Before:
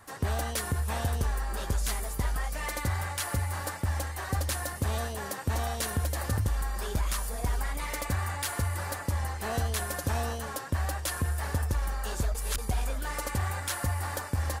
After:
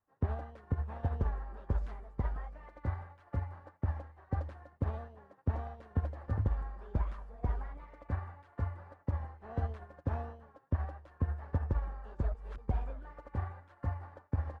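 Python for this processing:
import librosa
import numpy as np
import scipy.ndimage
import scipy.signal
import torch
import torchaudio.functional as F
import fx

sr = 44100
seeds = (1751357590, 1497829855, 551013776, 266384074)

y = scipy.signal.sosfilt(scipy.signal.butter(2, 1200.0, 'lowpass', fs=sr, output='sos'), x)
y = fx.upward_expand(y, sr, threshold_db=-45.0, expansion=2.5)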